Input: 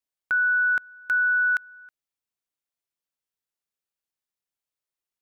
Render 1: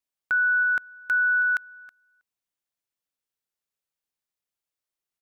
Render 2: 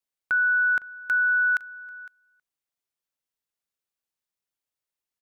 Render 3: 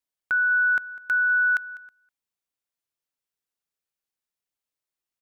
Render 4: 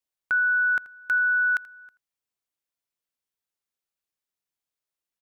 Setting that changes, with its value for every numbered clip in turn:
echo, time: 322, 509, 200, 82 ms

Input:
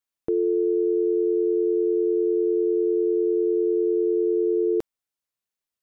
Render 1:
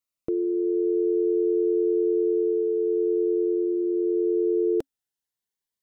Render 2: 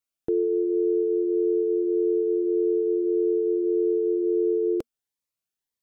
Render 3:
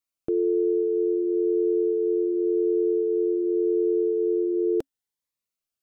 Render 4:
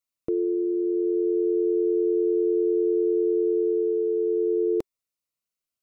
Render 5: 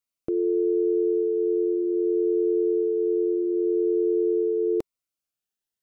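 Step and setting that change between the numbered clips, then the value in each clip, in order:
cascading phaser, rate: 0.3, 1.7, 0.92, 0.2, 0.62 Hz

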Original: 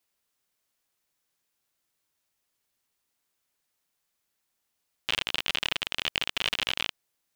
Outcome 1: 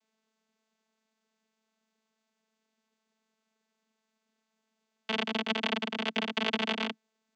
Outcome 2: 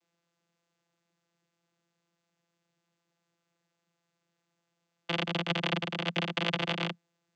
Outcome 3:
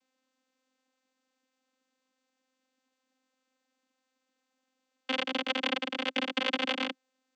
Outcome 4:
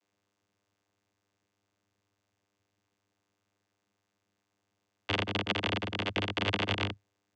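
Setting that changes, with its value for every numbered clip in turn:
vocoder, frequency: 220, 170, 260, 100 Hz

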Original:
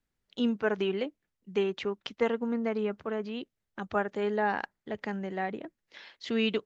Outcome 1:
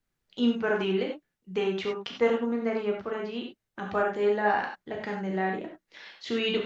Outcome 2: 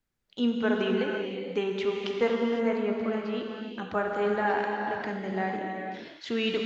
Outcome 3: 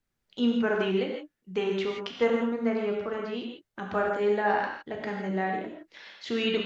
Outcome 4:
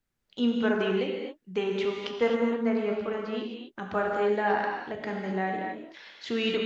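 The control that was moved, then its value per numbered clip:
non-linear reverb, gate: 0.12, 0.54, 0.19, 0.29 s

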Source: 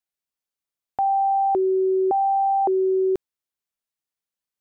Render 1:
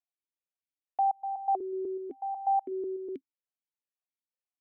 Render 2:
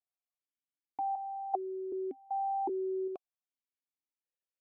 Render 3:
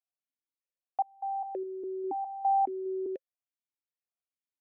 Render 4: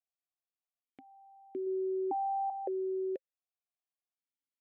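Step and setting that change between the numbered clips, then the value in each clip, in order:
vowel sequencer, rate: 8.1, 2.6, 4.9, 1.2 Hz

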